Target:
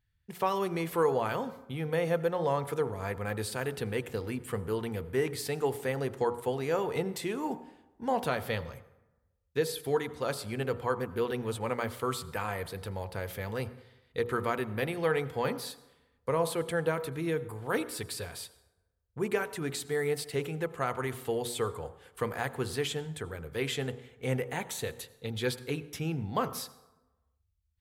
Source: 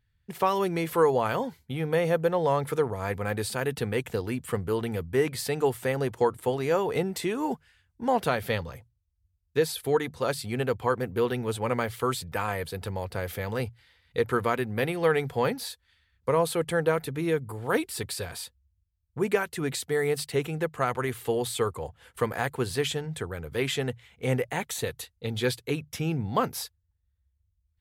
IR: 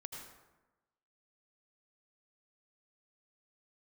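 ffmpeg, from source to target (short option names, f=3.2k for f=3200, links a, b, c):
-filter_complex "[0:a]bandreject=f=60.17:t=h:w=4,bandreject=f=120.34:t=h:w=4,bandreject=f=180.51:t=h:w=4,bandreject=f=240.68:t=h:w=4,bandreject=f=300.85:t=h:w=4,bandreject=f=361.02:t=h:w=4,bandreject=f=421.19:t=h:w=4,bandreject=f=481.36:t=h:w=4,bandreject=f=541.53:t=h:w=4,bandreject=f=601.7:t=h:w=4,bandreject=f=661.87:t=h:w=4,bandreject=f=722.04:t=h:w=4,bandreject=f=782.21:t=h:w=4,bandreject=f=842.38:t=h:w=4,bandreject=f=902.55:t=h:w=4,bandreject=f=962.72:t=h:w=4,bandreject=f=1.02289k:t=h:w=4,bandreject=f=1.08306k:t=h:w=4,bandreject=f=1.14323k:t=h:w=4,bandreject=f=1.2034k:t=h:w=4,bandreject=f=1.26357k:t=h:w=4,bandreject=f=1.32374k:t=h:w=4,bandreject=f=1.38391k:t=h:w=4,asplit=2[a][b];[1:a]atrim=start_sample=2205[c];[b][c]afir=irnorm=-1:irlink=0,volume=-10dB[d];[a][d]amix=inputs=2:normalize=0,volume=-5.5dB"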